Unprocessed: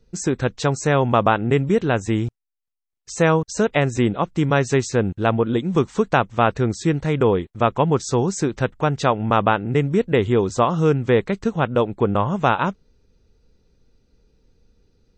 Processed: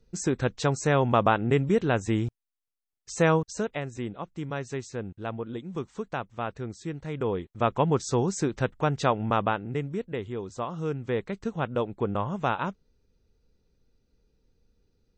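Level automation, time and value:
0:03.37 −5 dB
0:03.83 −15 dB
0:06.96 −15 dB
0:07.73 −5.5 dB
0:09.16 −5.5 dB
0:10.33 −16.5 dB
0:11.57 −9 dB

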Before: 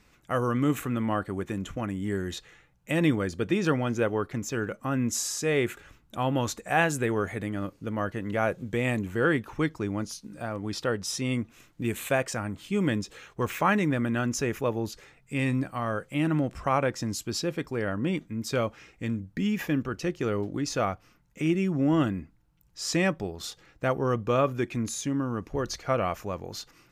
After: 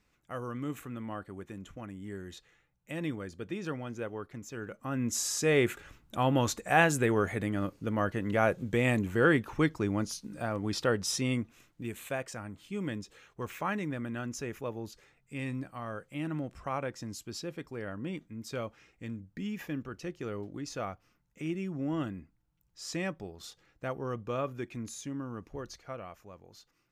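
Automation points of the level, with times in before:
0:04.50 −11.5 dB
0:05.38 0 dB
0:11.15 0 dB
0:11.91 −9.5 dB
0:25.48 −9.5 dB
0:26.07 −17 dB

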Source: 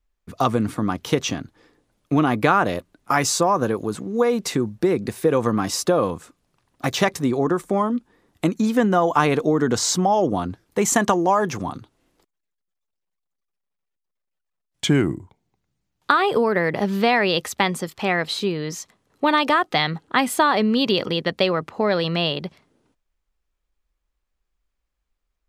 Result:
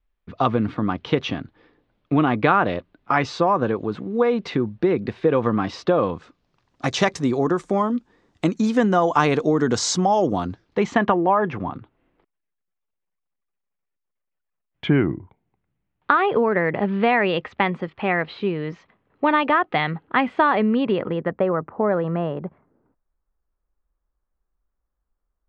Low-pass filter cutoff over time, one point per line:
low-pass filter 24 dB per octave
0:05.98 3,700 Hz
0:06.86 7,100 Hz
0:10.43 7,100 Hz
0:11.09 2,700 Hz
0:20.51 2,700 Hz
0:21.46 1,500 Hz

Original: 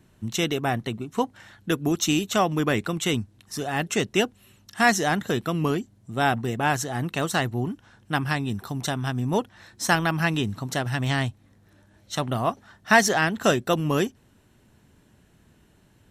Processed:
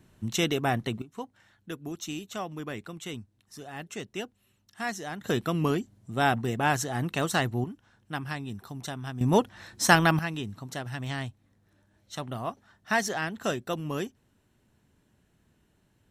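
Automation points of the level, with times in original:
−1.5 dB
from 0:01.02 −13.5 dB
from 0:05.24 −2 dB
from 0:07.64 −9 dB
from 0:09.21 +2 dB
from 0:10.19 −9 dB

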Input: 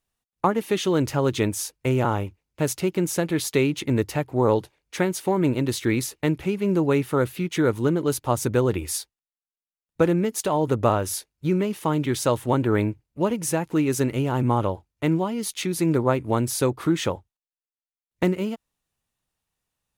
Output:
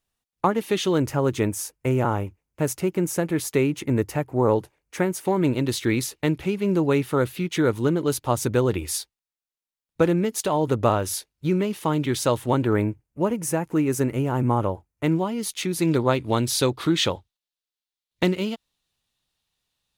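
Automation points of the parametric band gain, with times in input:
parametric band 3,800 Hz 0.99 octaves
+2 dB
from 0:00.98 −7.5 dB
from 0:05.25 +2.5 dB
from 0:12.73 −8 dB
from 0:15.04 +0.5 dB
from 0:15.82 +11.5 dB

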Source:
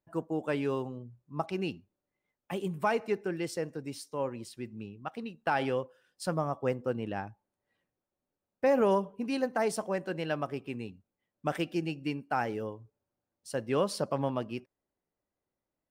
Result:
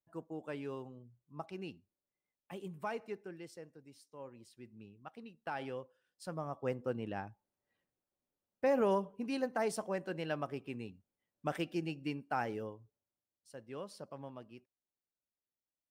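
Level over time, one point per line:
0:02.98 −11 dB
0:03.86 −18.5 dB
0:04.84 −11.5 dB
0:06.25 −11.5 dB
0:06.77 −5 dB
0:12.57 −5 dB
0:13.51 −16.5 dB

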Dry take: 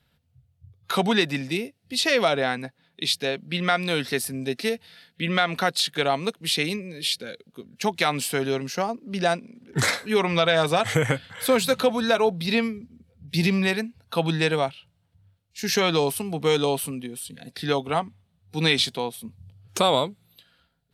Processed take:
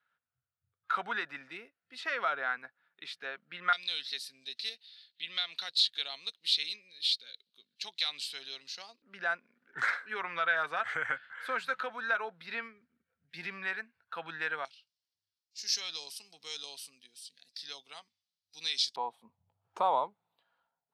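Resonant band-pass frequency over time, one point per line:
resonant band-pass, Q 4
1,400 Hz
from 0:03.73 4,000 Hz
from 0:09.02 1,500 Hz
from 0:14.65 5,100 Hz
from 0:18.96 900 Hz

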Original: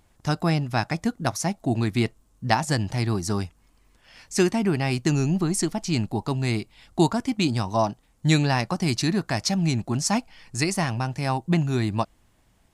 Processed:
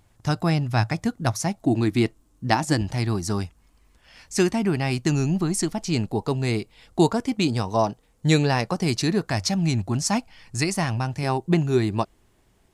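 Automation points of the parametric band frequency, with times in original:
parametric band +9.5 dB 0.36 octaves
110 Hz
from 0:01.65 310 Hz
from 0:02.81 62 Hz
from 0:05.81 460 Hz
from 0:09.29 93 Hz
from 0:11.23 390 Hz

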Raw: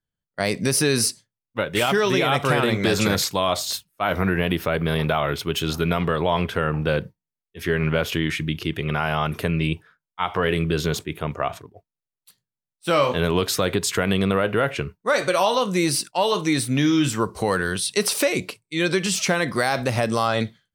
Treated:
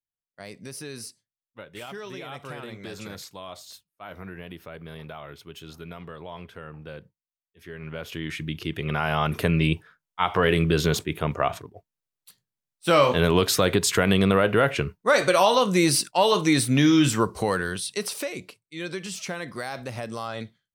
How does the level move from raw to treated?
0:07.71 −18 dB
0:08.38 −6.5 dB
0:09.46 +1 dB
0:17.16 +1 dB
0:18.35 −11.5 dB

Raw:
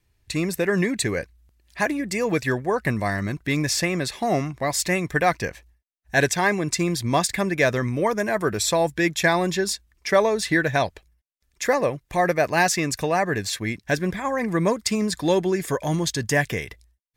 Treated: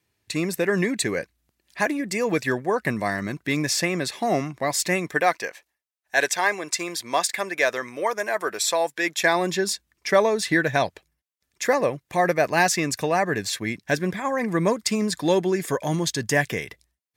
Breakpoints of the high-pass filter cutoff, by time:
0:04.94 160 Hz
0:05.48 520 Hz
0:08.99 520 Hz
0:09.71 130 Hz

